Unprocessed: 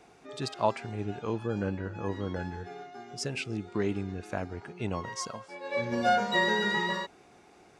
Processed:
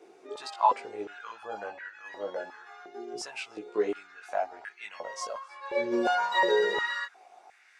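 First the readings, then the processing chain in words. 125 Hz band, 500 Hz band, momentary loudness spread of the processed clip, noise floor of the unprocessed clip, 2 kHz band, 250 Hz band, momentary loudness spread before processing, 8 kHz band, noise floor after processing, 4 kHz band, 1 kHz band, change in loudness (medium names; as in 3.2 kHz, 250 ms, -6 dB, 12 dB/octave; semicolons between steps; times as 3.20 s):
under -25 dB, +2.0 dB, 17 LU, -58 dBFS, 0.0 dB, -5.0 dB, 14 LU, -3.0 dB, -58 dBFS, -2.0 dB, +2.5 dB, +1.0 dB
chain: chorus voices 2, 0.32 Hz, delay 18 ms, depth 2 ms; step-sequenced high-pass 2.8 Hz 370–1800 Hz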